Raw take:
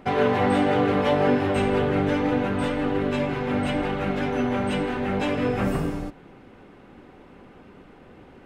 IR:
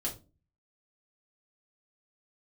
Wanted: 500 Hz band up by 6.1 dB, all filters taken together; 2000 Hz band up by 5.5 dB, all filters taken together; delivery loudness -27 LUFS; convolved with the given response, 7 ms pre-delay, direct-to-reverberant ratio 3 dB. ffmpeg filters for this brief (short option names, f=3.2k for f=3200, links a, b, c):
-filter_complex "[0:a]equalizer=f=500:t=o:g=7,equalizer=f=2k:t=o:g=6.5,asplit=2[a][b];[1:a]atrim=start_sample=2205,adelay=7[c];[b][c]afir=irnorm=-1:irlink=0,volume=-5.5dB[d];[a][d]amix=inputs=2:normalize=0,volume=-9dB"